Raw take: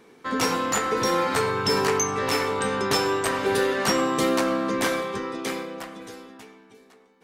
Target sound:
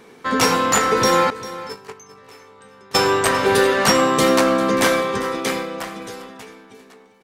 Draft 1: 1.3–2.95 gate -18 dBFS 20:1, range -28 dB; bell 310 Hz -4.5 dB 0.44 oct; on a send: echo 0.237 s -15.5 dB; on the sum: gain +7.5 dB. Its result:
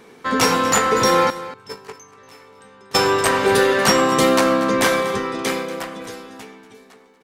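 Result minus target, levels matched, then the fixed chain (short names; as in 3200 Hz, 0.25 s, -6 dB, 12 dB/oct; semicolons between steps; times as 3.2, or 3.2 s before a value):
echo 0.16 s early
1.3–2.95 gate -18 dBFS 20:1, range -28 dB; bell 310 Hz -4.5 dB 0.44 oct; on a send: echo 0.397 s -15.5 dB; on the sum: gain +7.5 dB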